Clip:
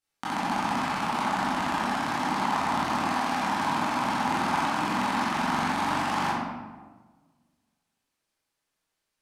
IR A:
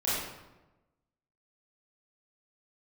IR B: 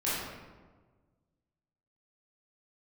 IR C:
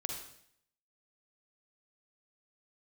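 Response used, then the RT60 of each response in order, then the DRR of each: B; 1.1 s, 1.4 s, 0.65 s; -10.5 dB, -10.5 dB, 1.5 dB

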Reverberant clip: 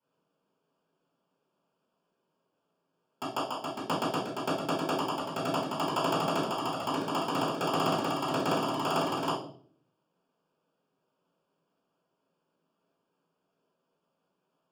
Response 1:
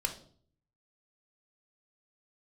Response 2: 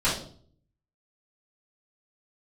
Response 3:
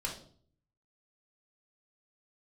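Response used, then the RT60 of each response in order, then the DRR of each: 2; 0.55 s, 0.50 s, 0.55 s; 4.0 dB, -11.0 dB, -2.0 dB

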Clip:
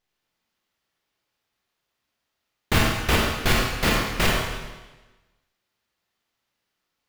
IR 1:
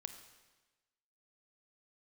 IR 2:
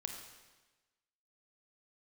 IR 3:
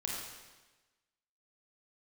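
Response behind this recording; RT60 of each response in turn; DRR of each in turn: 3; 1.2 s, 1.2 s, 1.2 s; 8.0 dB, 3.5 dB, -3.0 dB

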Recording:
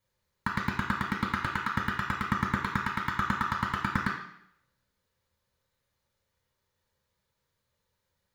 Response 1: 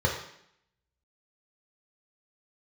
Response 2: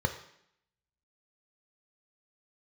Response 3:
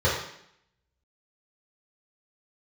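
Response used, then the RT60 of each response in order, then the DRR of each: 1; 0.70 s, 0.70 s, 0.70 s; -2.0 dB, 5.0 dB, -8.5 dB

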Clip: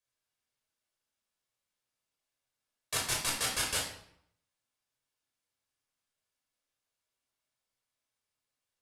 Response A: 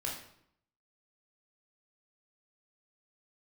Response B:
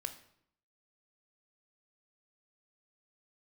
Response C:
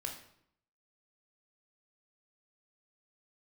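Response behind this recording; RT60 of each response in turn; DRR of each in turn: A; 0.70 s, 0.70 s, 0.70 s; -2.5 dB, 8.0 dB, 2.0 dB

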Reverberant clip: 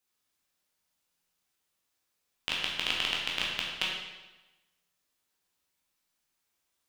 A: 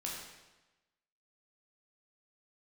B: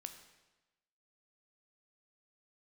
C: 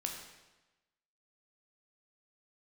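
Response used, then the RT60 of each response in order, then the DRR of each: A; 1.1 s, 1.1 s, 1.1 s; -4.0 dB, 6.5 dB, 1.0 dB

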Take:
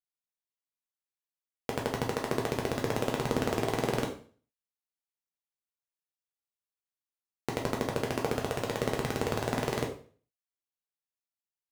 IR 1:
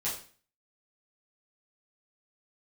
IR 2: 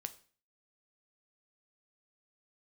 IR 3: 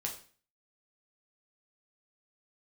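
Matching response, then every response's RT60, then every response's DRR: 3; 0.40 s, 0.40 s, 0.40 s; -9.0 dB, 9.5 dB, 0.0 dB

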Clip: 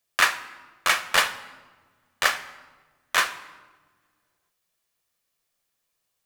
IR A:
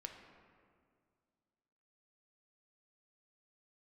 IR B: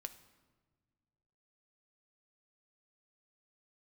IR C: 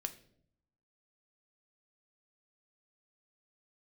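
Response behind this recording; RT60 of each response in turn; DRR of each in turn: B; 2.1 s, no single decay rate, 0.65 s; 3.0 dB, 9.0 dB, 8.0 dB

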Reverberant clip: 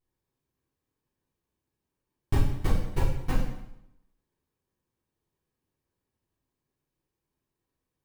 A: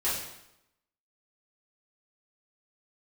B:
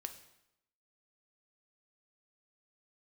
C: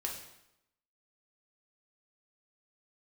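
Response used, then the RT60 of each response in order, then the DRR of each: A; 0.85 s, 0.85 s, 0.85 s; -10.5 dB, 7.0 dB, -1.0 dB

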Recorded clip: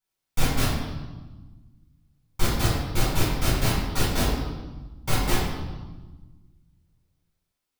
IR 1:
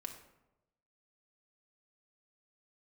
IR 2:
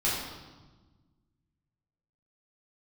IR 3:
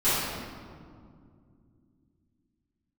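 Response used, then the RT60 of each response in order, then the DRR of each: 2; 0.95 s, 1.3 s, 2.3 s; 3.0 dB, -8.5 dB, -17.5 dB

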